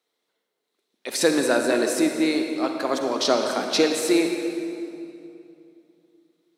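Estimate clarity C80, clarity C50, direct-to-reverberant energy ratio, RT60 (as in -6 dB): 5.0 dB, 4.0 dB, 3.5 dB, 2.7 s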